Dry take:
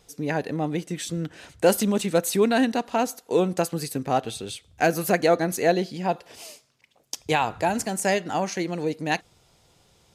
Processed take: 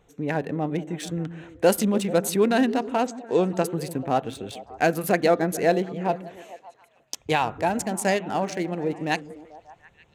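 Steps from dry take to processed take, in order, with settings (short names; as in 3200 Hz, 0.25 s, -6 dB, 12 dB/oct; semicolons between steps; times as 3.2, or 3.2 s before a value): Wiener smoothing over 9 samples; 3.02–3.64 brick-wall FIR low-pass 8500 Hz; delay with a stepping band-pass 0.146 s, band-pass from 210 Hz, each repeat 0.7 oct, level -9.5 dB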